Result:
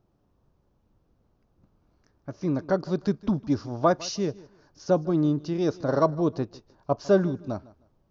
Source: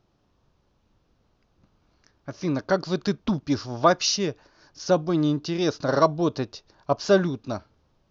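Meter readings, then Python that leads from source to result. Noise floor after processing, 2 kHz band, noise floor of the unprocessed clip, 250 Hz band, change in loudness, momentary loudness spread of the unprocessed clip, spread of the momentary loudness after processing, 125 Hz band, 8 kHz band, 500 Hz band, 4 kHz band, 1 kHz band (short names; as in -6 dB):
-69 dBFS, -7.5 dB, -68 dBFS, -0.5 dB, -2.0 dB, 14 LU, 14 LU, 0.0 dB, n/a, -1.5 dB, -10.5 dB, -4.0 dB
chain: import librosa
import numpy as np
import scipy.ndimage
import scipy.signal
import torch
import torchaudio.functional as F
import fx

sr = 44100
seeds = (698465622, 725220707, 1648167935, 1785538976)

y = fx.peak_eq(x, sr, hz=3600.0, db=-11.5, octaves=2.9)
y = fx.echo_feedback(y, sr, ms=155, feedback_pct=24, wet_db=-21.0)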